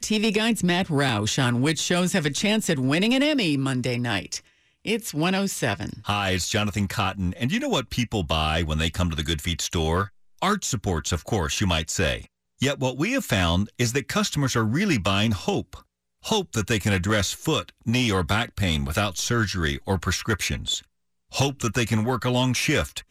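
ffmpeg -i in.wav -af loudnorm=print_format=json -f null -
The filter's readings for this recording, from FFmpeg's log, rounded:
"input_i" : "-24.2",
"input_tp" : "-12.7",
"input_lra" : "2.9",
"input_thresh" : "-34.3",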